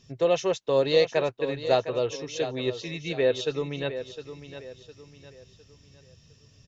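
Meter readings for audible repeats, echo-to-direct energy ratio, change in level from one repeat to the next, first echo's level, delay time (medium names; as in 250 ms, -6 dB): 3, -11.0 dB, -8.5 dB, -11.5 dB, 708 ms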